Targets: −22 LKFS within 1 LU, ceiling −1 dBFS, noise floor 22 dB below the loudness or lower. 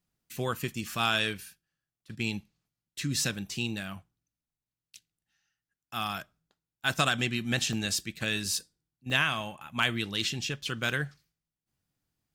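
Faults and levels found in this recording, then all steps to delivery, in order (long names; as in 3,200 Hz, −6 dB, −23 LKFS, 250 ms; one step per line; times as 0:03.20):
number of dropouts 4; longest dropout 1.6 ms; integrated loudness −30.5 LKFS; sample peak −12.0 dBFS; target loudness −22.0 LKFS
→ repair the gap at 0:07.73/0:09.10/0:09.82/0:10.89, 1.6 ms
level +8.5 dB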